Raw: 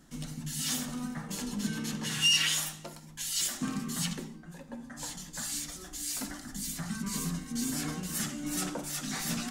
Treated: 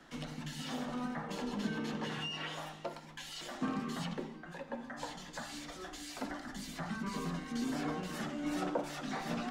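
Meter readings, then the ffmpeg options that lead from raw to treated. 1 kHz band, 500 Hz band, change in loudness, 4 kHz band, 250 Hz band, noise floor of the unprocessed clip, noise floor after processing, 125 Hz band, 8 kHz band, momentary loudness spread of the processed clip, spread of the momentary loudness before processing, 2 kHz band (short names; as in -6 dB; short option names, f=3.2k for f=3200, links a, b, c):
+3.0 dB, +5.0 dB, -7.5 dB, -12.5 dB, -2.5 dB, -50 dBFS, -51 dBFS, -5.5 dB, -18.0 dB, 8 LU, 13 LU, -6.5 dB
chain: -filter_complex "[0:a]acrossover=split=370 4200:gain=0.2 1 0.112[a][b][c];[a][b][c]amix=inputs=3:normalize=0,acrossover=split=140|940[d][e][f];[f]acompressor=threshold=-55dB:ratio=4[g];[d][e][g]amix=inputs=3:normalize=0,volume=7.5dB"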